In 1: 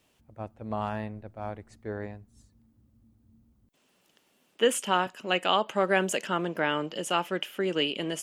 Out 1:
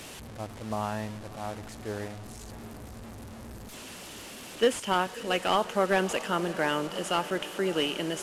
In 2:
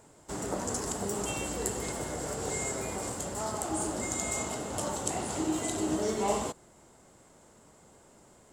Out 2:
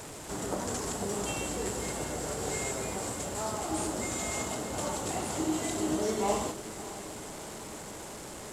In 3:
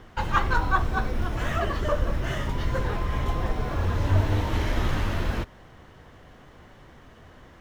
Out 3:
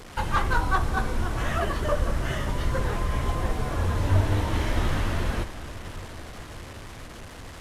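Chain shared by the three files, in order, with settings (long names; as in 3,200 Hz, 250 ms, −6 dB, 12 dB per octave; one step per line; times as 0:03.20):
linear delta modulator 64 kbit/s, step −37.5 dBFS
feedback delay with all-pass diffusion 617 ms, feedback 67%, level −15 dB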